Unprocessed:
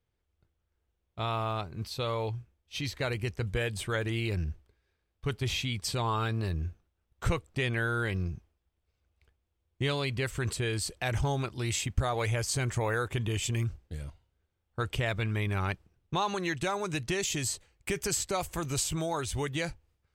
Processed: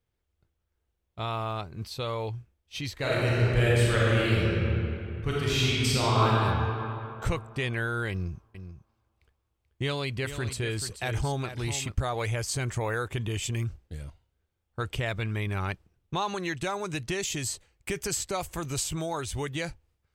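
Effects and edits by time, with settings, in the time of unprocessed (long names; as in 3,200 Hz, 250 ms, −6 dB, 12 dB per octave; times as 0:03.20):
0:02.94–0:06.32: thrown reverb, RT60 2.9 s, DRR −7 dB
0:08.11–0:11.95: single-tap delay 434 ms −10.5 dB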